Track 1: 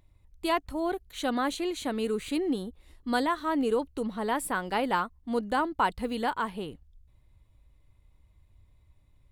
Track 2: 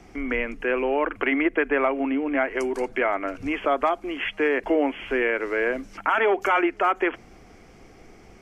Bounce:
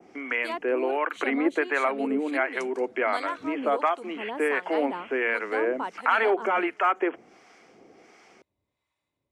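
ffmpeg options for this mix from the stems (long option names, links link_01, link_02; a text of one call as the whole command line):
ffmpeg -i stem1.wav -i stem2.wav -filter_complex "[0:a]volume=-2dB[link_01];[1:a]volume=1.5dB[link_02];[link_01][link_02]amix=inputs=2:normalize=0,adynamicequalizer=threshold=0.00562:dfrequency=4400:dqfactor=1.3:tfrequency=4400:tqfactor=1.3:attack=5:release=100:ratio=0.375:range=3:mode=cutabove:tftype=bell,acrossover=split=750[link_03][link_04];[link_03]aeval=exprs='val(0)*(1-0.7/2+0.7/2*cos(2*PI*1.4*n/s))':channel_layout=same[link_05];[link_04]aeval=exprs='val(0)*(1-0.7/2-0.7/2*cos(2*PI*1.4*n/s))':channel_layout=same[link_06];[link_05][link_06]amix=inputs=2:normalize=0,highpass=290,lowpass=7900" out.wav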